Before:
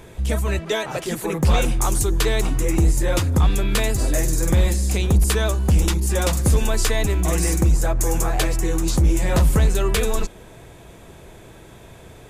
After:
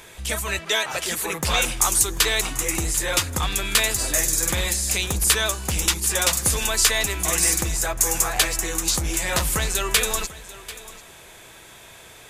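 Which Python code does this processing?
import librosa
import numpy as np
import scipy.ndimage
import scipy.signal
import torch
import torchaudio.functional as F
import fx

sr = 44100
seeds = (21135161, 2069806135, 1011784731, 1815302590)

p1 = fx.tilt_shelf(x, sr, db=-9.5, hz=740.0)
p2 = p1 + fx.echo_single(p1, sr, ms=741, db=-17.5, dry=0)
y = p2 * 10.0 ** (-2.0 / 20.0)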